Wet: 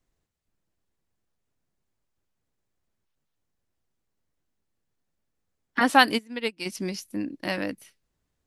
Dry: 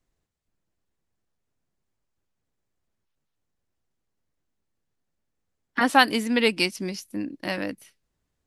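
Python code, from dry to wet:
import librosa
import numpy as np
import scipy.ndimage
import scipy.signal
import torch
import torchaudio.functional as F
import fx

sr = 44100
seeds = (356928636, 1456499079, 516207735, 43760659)

y = fx.upward_expand(x, sr, threshold_db=-29.0, expansion=2.5, at=(6.17, 6.65), fade=0.02)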